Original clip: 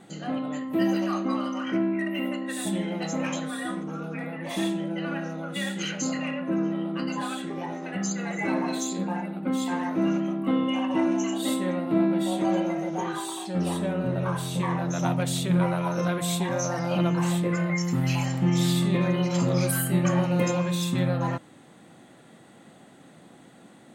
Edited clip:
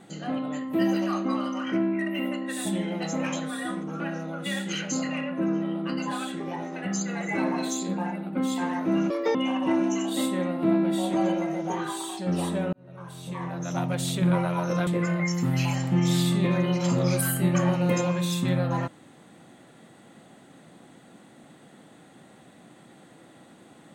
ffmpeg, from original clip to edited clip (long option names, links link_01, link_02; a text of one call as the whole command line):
ffmpeg -i in.wav -filter_complex "[0:a]asplit=6[link_01][link_02][link_03][link_04][link_05][link_06];[link_01]atrim=end=4.002[link_07];[link_02]atrim=start=5.098:end=10.204[link_08];[link_03]atrim=start=10.2:end=10.63,asetpts=PTS-STARTPTS,asetrate=76293,aresample=44100,atrim=end_sample=10961,asetpts=PTS-STARTPTS[link_09];[link_04]atrim=start=10.626:end=14.01,asetpts=PTS-STARTPTS,afade=type=out:start_time=3.38:duration=0.004:curve=hsin[link_10];[link_05]atrim=start=14.01:end=16.152,asetpts=PTS-STARTPTS,afade=type=in:duration=1.48[link_11];[link_06]atrim=start=17.368[link_12];[link_07][link_08]acrossfade=duration=0.004:curve1=hsin:curve2=hsin[link_13];[link_13][link_09]acrossfade=duration=0.004:curve1=hsin:curve2=hsin[link_14];[link_10][link_11]concat=n=2:v=0:a=1[link_15];[link_14][link_15]acrossfade=duration=0.004:curve1=hsin:curve2=hsin[link_16];[link_16][link_12]acrossfade=duration=0.004:curve1=hsin:curve2=hsin" out.wav